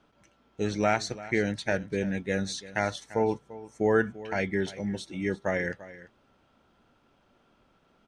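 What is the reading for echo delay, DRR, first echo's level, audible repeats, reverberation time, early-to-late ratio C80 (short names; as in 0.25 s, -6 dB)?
0.342 s, none, -17.0 dB, 1, none, none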